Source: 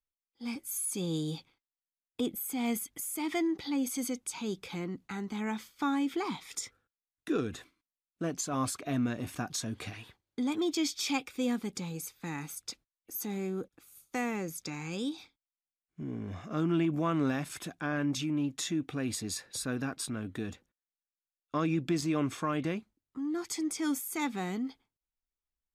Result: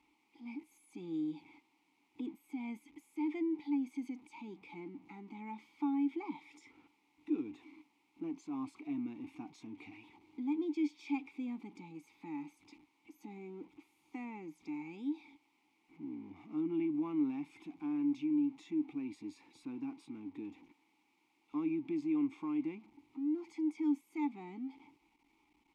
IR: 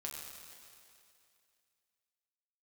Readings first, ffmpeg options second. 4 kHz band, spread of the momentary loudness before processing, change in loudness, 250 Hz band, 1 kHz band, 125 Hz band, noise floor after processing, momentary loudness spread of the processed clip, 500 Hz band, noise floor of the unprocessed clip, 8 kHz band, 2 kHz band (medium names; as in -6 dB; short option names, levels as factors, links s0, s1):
under -20 dB, 10 LU, -5.0 dB, -3.5 dB, -11.0 dB, -18.5 dB, -76 dBFS, 16 LU, -9.5 dB, under -85 dBFS, under -30 dB, -13.5 dB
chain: -filter_complex "[0:a]aeval=exprs='val(0)+0.5*0.00794*sgn(val(0))':c=same,asplit=3[s0][s1][s2];[s0]bandpass=f=300:t=q:w=8,volume=1[s3];[s1]bandpass=f=870:t=q:w=8,volume=0.501[s4];[s2]bandpass=f=2240:t=q:w=8,volume=0.355[s5];[s3][s4][s5]amix=inputs=3:normalize=0"